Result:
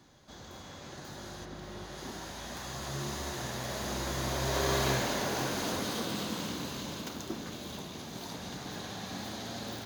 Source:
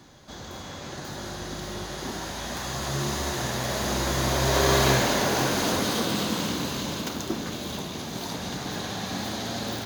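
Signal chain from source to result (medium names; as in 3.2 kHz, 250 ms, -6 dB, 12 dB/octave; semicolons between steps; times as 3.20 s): 1.44–1.95 s: peaking EQ 15 kHz -13.5 dB -> -3 dB 2 oct; trim -8.5 dB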